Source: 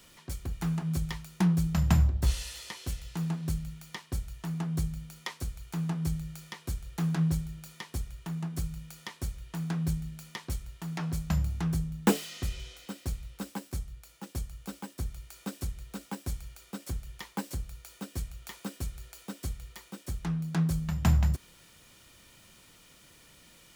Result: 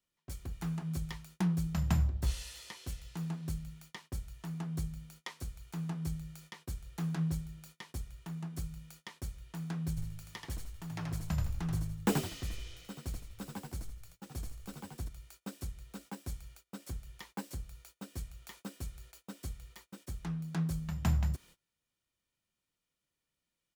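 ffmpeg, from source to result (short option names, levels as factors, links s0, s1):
-filter_complex "[0:a]asplit=3[s0][s1][s2];[s0]afade=t=out:st=9.96:d=0.02[s3];[s1]asplit=5[s4][s5][s6][s7][s8];[s5]adelay=81,afreqshift=-54,volume=0.631[s9];[s6]adelay=162,afreqshift=-108,volume=0.221[s10];[s7]adelay=243,afreqshift=-162,volume=0.0776[s11];[s8]adelay=324,afreqshift=-216,volume=0.0269[s12];[s4][s9][s10][s11][s12]amix=inputs=5:normalize=0,afade=t=in:st=9.96:d=0.02,afade=t=out:st=15.07:d=0.02[s13];[s2]afade=t=in:st=15.07:d=0.02[s14];[s3][s13][s14]amix=inputs=3:normalize=0,agate=range=0.0562:threshold=0.00355:ratio=16:detection=peak,volume=0.501"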